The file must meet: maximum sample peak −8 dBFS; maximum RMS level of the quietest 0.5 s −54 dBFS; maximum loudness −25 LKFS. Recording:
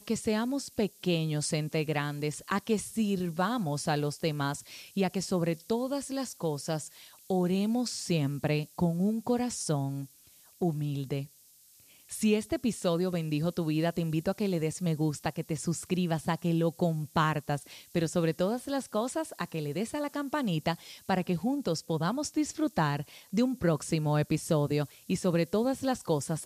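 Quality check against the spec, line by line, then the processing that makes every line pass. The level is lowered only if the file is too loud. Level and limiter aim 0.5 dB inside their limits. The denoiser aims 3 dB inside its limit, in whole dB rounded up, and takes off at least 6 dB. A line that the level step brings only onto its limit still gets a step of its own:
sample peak −14.5 dBFS: in spec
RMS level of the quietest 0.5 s −59 dBFS: in spec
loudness −31.0 LKFS: in spec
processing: no processing needed

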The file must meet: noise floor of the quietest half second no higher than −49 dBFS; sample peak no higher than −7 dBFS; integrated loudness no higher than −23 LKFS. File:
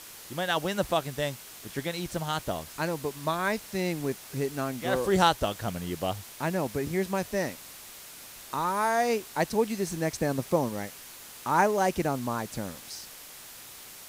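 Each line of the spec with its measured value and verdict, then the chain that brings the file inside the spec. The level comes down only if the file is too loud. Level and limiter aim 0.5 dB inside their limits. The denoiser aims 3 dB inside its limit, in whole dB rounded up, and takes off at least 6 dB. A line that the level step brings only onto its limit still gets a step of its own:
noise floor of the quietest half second −46 dBFS: out of spec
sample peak −8.0 dBFS: in spec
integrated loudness −29.5 LKFS: in spec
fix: broadband denoise 6 dB, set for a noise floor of −46 dBFS

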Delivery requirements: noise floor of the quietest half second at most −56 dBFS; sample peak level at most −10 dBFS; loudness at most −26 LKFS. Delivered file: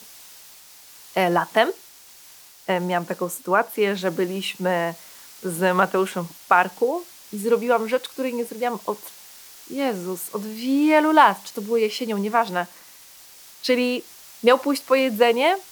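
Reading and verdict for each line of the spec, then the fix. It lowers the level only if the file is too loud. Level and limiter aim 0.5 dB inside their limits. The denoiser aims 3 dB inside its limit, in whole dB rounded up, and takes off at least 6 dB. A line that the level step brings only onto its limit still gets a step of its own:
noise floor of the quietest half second −48 dBFS: out of spec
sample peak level −3.0 dBFS: out of spec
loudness −22.0 LKFS: out of spec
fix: broadband denoise 7 dB, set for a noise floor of −48 dBFS
level −4.5 dB
brickwall limiter −10.5 dBFS

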